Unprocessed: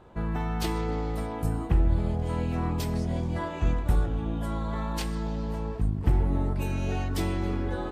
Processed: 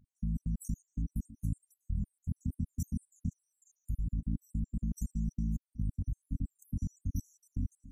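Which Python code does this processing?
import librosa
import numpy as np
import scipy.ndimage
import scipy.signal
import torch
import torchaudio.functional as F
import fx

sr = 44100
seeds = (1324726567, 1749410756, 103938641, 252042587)

y = fx.spec_dropout(x, sr, seeds[0], share_pct=64)
y = fx.brickwall_bandstop(y, sr, low_hz=280.0, high_hz=5600.0)
y = fx.level_steps(y, sr, step_db=17)
y = F.gain(torch.from_numpy(y), 2.5).numpy()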